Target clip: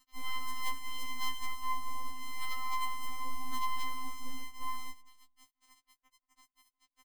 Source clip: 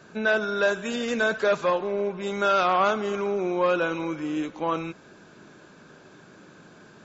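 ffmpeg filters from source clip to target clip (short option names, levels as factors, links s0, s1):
-filter_complex "[0:a]highpass=f=64:p=1,aemphasis=mode=production:type=75fm,acrossover=split=3700[s0][s1];[s1]acompressor=threshold=0.00398:ratio=4:attack=1:release=60[s2];[s0][s2]amix=inputs=2:normalize=0,highshelf=f=2400:g=-7,acrossover=split=280[s3][s4];[s3]acompressor=threshold=0.0178:ratio=5[s5];[s5][s4]amix=inputs=2:normalize=0,alimiter=limit=0.0891:level=0:latency=1:release=12,afftfilt=real='hypot(re,im)*cos(2*PI*random(0))':imag='hypot(re,im)*sin(2*PI*random(1))':win_size=512:overlap=0.75,aphaser=in_gain=1:out_gain=1:delay=3.6:decay=0.3:speed=1.4:type=triangular,acrusher=bits=5:dc=4:mix=0:aa=0.000001,afftfilt=real='hypot(re,im)*cos(PI*b)':imag='0':win_size=512:overlap=0.75,asplit=2[s6][s7];[s7]adelay=174,lowpass=f=860:p=1,volume=0.075,asplit=2[s8][s9];[s9]adelay=174,lowpass=f=860:p=1,volume=0.48,asplit=2[s10][s11];[s11]adelay=174,lowpass=f=860:p=1,volume=0.48[s12];[s6][s8][s10][s12]amix=inputs=4:normalize=0,afftfilt=real='re*3.46*eq(mod(b,12),0)':imag='im*3.46*eq(mod(b,12),0)':win_size=2048:overlap=0.75,volume=1.33"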